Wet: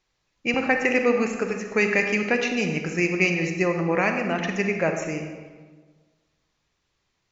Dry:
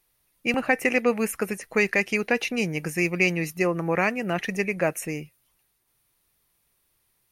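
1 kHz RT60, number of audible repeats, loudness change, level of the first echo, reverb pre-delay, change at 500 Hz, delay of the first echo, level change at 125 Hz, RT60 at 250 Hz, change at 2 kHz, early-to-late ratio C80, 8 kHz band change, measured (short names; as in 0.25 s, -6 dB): 1.4 s, none, +1.5 dB, none, 33 ms, +2.0 dB, none, +1.5 dB, 1.5 s, +1.5 dB, 7.0 dB, -2.5 dB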